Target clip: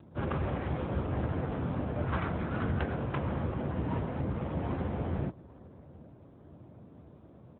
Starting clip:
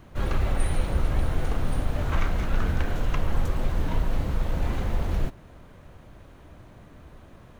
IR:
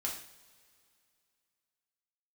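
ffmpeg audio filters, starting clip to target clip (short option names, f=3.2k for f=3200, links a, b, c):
-filter_complex "[0:a]asplit=2[a][b];[b]aecho=0:1:798|1596:0.0841|0.0269[c];[a][c]amix=inputs=2:normalize=0,aeval=exprs='0.266*(cos(1*acos(clip(val(0)/0.266,-1,1)))-cos(1*PI/2))+0.00299*(cos(6*acos(clip(val(0)/0.266,-1,1)))-cos(6*PI/2))+0.00266*(cos(7*acos(clip(val(0)/0.266,-1,1)))-cos(7*PI/2))':c=same,adynamicsmooth=sensitivity=4.5:basefreq=750" -ar 8000 -c:a libopencore_amrnb -b:a 10200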